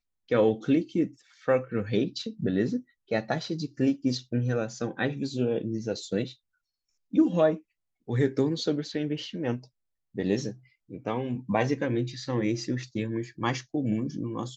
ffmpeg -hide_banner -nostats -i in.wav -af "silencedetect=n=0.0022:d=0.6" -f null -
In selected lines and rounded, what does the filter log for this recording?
silence_start: 6.35
silence_end: 7.12 | silence_duration: 0.76